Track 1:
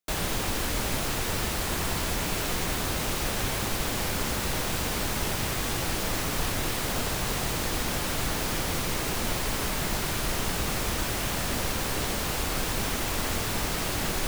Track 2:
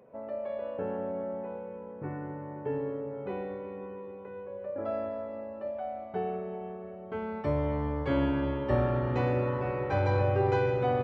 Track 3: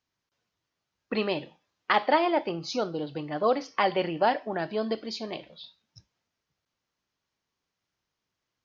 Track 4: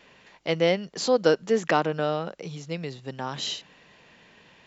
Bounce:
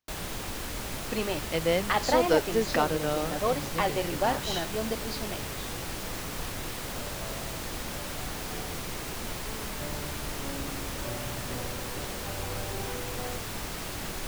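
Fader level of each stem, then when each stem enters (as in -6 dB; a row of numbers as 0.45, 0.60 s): -7.0, -13.0, -3.5, -4.0 dB; 0.00, 2.35, 0.00, 1.05 s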